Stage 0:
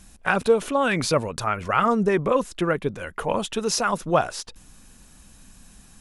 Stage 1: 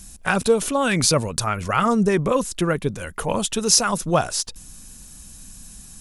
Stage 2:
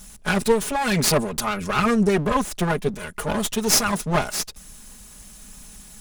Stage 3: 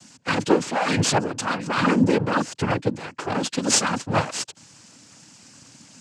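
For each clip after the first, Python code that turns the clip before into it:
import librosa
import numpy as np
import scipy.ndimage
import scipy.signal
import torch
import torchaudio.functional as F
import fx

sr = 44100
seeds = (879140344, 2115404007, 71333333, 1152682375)

y1 = fx.bass_treble(x, sr, bass_db=6, treble_db=12)
y2 = fx.lower_of_two(y1, sr, delay_ms=4.8)
y3 = fx.noise_vocoder(y2, sr, seeds[0], bands=8)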